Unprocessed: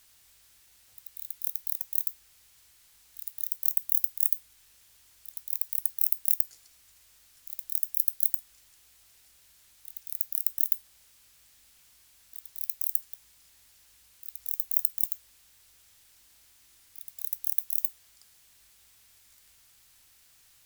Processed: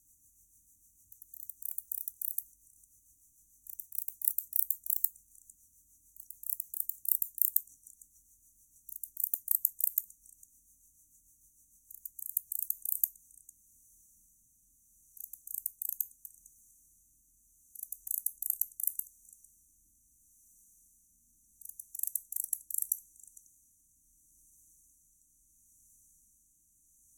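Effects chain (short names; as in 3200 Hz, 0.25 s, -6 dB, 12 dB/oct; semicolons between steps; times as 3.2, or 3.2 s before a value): speed glide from 88% -> 64%; rotary speaker horn 6.7 Hz, later 0.75 Hz, at 12.66; on a send: delay with a stepping band-pass 0.151 s, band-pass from 880 Hz, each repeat 1.4 oct, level -8 dB; on the sum: FFT band-reject 330–5800 Hz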